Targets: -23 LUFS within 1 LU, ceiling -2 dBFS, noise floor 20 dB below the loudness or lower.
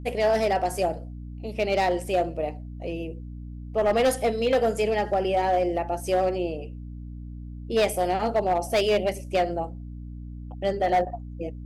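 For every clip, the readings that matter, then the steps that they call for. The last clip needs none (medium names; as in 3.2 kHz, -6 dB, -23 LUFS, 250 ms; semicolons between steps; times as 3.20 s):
clipped samples 1.6%; clipping level -16.5 dBFS; hum 60 Hz; highest harmonic 300 Hz; hum level -35 dBFS; loudness -25.5 LUFS; peak level -16.5 dBFS; loudness target -23.0 LUFS
-> clip repair -16.5 dBFS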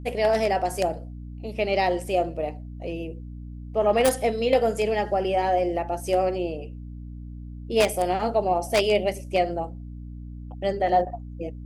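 clipped samples 0.0%; hum 60 Hz; highest harmonic 300 Hz; hum level -35 dBFS
-> hum notches 60/120/180/240/300 Hz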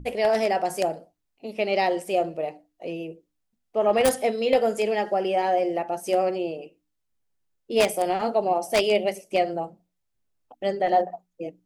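hum not found; loudness -24.5 LUFS; peak level -7.0 dBFS; loudness target -23.0 LUFS
-> trim +1.5 dB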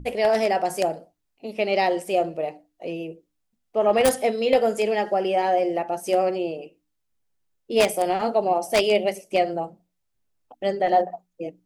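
loudness -23.0 LUFS; peak level -5.5 dBFS; noise floor -76 dBFS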